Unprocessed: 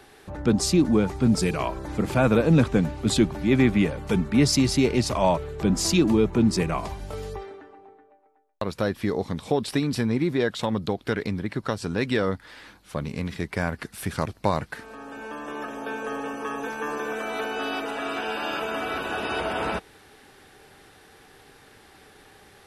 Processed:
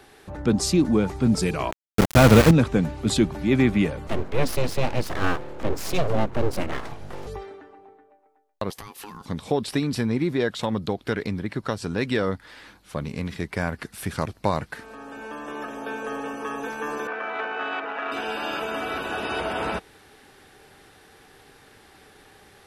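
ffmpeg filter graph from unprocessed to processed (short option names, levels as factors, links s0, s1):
-filter_complex "[0:a]asettb=1/sr,asplit=3[s0][s1][s2];[s0]atrim=end=1.714[s3];[s1]atrim=start=1.71:end=2.51,asetpts=PTS-STARTPTS,afade=t=in:d=0.004:c=qsin,afade=t=out:st=0.796:d=0.004:c=qsin,aeval=exprs='val(0)*gte(abs(val(0)),0.0794)':c=same,asubboost=boost=5:cutoff=220,acontrast=89[s4];[s2]atrim=start=2.506[s5];[s3][s4]acrossfade=d=0.004:c1=hsin:c2=qsin[s6];[s6][s5]acrossfade=d=0.004:c1=qsin:c2=hsin,asettb=1/sr,asplit=3[s7][s8][s9];[s7]atrim=end=4.074[s10];[s8]atrim=start=4.07:end=7.27,asetpts=PTS-STARTPTS,afade=t=in:d=0.004:c=qsin,afade=t=out:st=3.196:d=0.004:c=qsin,highshelf=f=3700:g=-8,aeval=exprs='abs(val(0))':c=same[s11];[s9]atrim=start=7.266[s12];[s10][s11]acrossfade=d=0.004:c1=hsin:c2=qsin[s13];[s13][s12]acrossfade=d=0.004:c1=qsin:c2=hsin,asettb=1/sr,asplit=3[s14][s15][s16];[s14]atrim=end=8.704[s17];[s15]atrim=start=8.7:end=9.26,asetpts=PTS-STARTPTS,afade=t=in:d=0.004:c=qsin,afade=t=out:st=0.556:d=0.004:c=qsin,aemphasis=mode=production:type=bsi,acompressor=threshold=0.0251:ratio=16:attack=3.2:release=140:knee=1:detection=peak,aeval=exprs='val(0)*sin(2*PI*620*n/s)':c=same[s18];[s16]atrim=start=9.256[s19];[s17][s18]acrossfade=d=0.004:c1=hsin:c2=qsin[s20];[s20][s19]acrossfade=d=0.004:c1=qsin:c2=hsin,asettb=1/sr,asplit=3[s21][s22][s23];[s21]atrim=end=17.074[s24];[s22]atrim=start=17.07:end=18.12,asetpts=PTS-STARTPTS,afade=t=in:d=0.004:c=qsin,afade=t=out:st=1.046:d=0.004:c=qsin,tiltshelf=f=710:g=-8.5,adynamicsmooth=sensitivity=1.5:basefreq=1500,highpass=210,lowpass=2300[s25];[s23]atrim=start=18.116[s26];[s24][s25]acrossfade=d=0.004:c1=hsin:c2=qsin[s27];[s27][s26]acrossfade=d=0.004:c1=qsin:c2=hsin"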